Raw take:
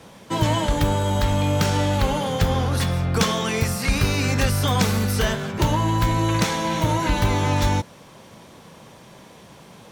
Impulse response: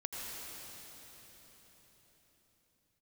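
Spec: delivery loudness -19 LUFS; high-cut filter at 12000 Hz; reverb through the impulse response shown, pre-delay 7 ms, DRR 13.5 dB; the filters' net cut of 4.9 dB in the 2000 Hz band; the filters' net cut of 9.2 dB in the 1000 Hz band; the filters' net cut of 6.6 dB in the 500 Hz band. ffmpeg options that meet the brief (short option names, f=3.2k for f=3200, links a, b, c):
-filter_complex "[0:a]lowpass=12k,equalizer=f=500:t=o:g=-5.5,equalizer=f=1k:t=o:g=-8.5,equalizer=f=2k:t=o:g=-3.5,asplit=2[a][b];[1:a]atrim=start_sample=2205,adelay=7[c];[b][c]afir=irnorm=-1:irlink=0,volume=-15dB[d];[a][d]amix=inputs=2:normalize=0,volume=4.5dB"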